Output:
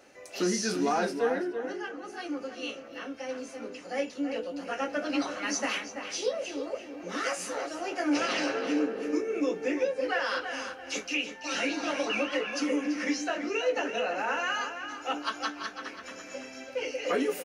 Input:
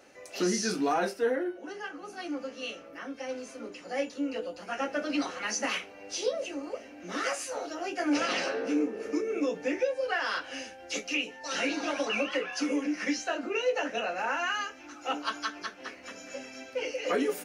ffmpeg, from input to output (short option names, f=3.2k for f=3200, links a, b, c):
-filter_complex "[0:a]asettb=1/sr,asplit=3[a][b][c];[a]atrim=end=0.854[d];[b]atrim=start=0.85:end=2.13,asetpts=PTS-STARTPTS,afade=t=in:d=0.004:c=qsin,afade=t=out:st=1.276:d=0.004:c=qsin,lowpass=11k[e];[c]atrim=start=2.126[f];[d][e]acrossfade=d=0.004:c1=hsin:c2=qsin[g];[g][f]acrossfade=d=0.004:c1=qsin:c2=hsin,asplit=2[h][i];[i]adelay=334,lowpass=f=3.4k:p=1,volume=-7.5dB,asplit=2[j][k];[k]adelay=334,lowpass=f=3.4k:p=1,volume=0.28,asplit=2[l][m];[m]adelay=334,lowpass=f=3.4k:p=1,volume=0.28[n];[h][j][l][n]amix=inputs=4:normalize=0"